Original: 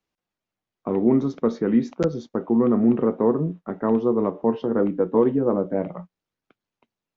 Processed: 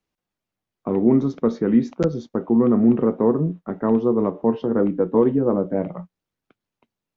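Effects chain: low shelf 260 Hz +4.5 dB

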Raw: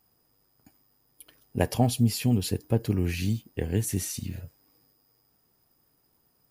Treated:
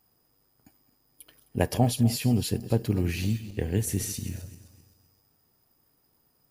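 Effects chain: regenerating reverse delay 0.13 s, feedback 57%, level -14 dB

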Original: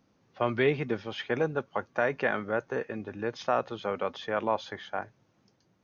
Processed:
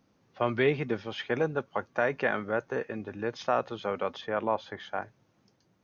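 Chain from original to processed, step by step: 4.21–4.8 high shelf 3900 Hz -11 dB

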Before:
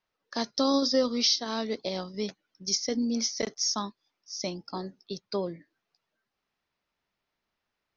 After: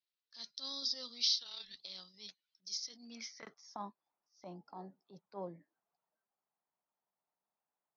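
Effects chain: bell 160 Hz +14 dB 1.5 oct; 1.39–1.8 frequency shift -240 Hz; transient shaper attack -12 dB, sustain +2 dB; band-pass sweep 4000 Hz -> 820 Hz, 2.93–3.73; gain -4 dB

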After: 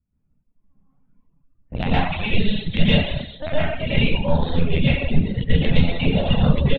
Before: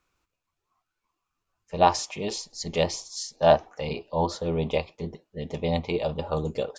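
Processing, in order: one-sided fold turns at -11.5 dBFS; on a send: feedback echo 81 ms, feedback 49%, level -5 dB; on the sum: AGC gain up to 13.5 dB; LPC vocoder at 8 kHz pitch kept; compressor 8:1, threshold -20 dBFS, peak gain reduction 14 dB; band shelf 660 Hz -11.5 dB 2.4 oct; plate-style reverb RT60 0.61 s, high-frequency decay 0.8×, pre-delay 0.105 s, DRR -9 dB; reverb removal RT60 1 s; low-pass opened by the level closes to 370 Hz, open at -23.5 dBFS; gain +3.5 dB

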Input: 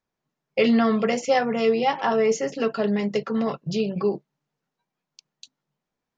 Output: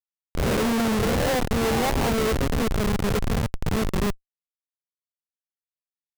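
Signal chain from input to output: spectral swells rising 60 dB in 1.30 s; Schmitt trigger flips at -17.5 dBFS

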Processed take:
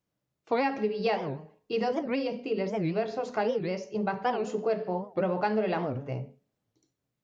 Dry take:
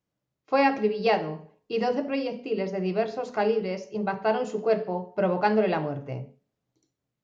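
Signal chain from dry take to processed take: compressor 3:1, threshold -25 dBFS, peak gain reduction 7 dB; record warp 78 rpm, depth 250 cents

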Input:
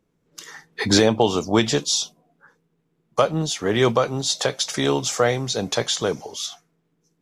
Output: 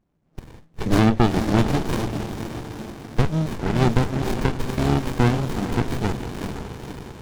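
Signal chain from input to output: diffused feedback echo 0.483 s, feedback 52%, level -6 dB; running maximum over 65 samples; gain +1.5 dB

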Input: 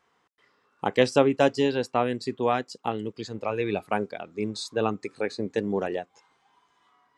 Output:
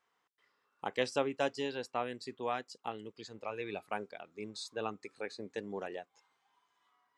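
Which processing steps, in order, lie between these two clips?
low shelf 440 Hz -9 dB; gain -8.5 dB

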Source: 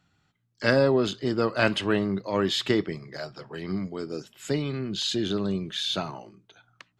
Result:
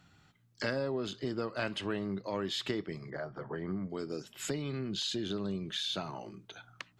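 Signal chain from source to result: compressor 3:1, threshold -43 dBFS, peak gain reduction 19.5 dB; 3.1–3.9 polynomial smoothing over 41 samples; gain +5.5 dB

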